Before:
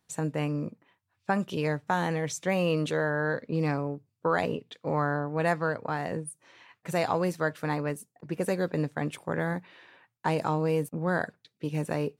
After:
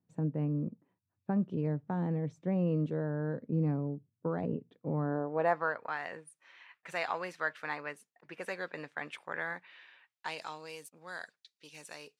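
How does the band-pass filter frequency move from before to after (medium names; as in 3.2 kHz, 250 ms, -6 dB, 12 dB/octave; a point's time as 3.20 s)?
band-pass filter, Q 1
4.98 s 190 Hz
5.28 s 510 Hz
5.93 s 2 kHz
9.53 s 2 kHz
10.84 s 5.3 kHz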